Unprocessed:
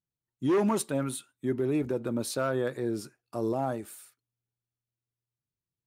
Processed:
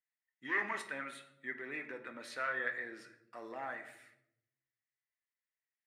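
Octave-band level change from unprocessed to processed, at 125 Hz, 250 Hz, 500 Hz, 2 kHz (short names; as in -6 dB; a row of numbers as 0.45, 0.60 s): -28.0, -21.0, -17.0, +6.0 dB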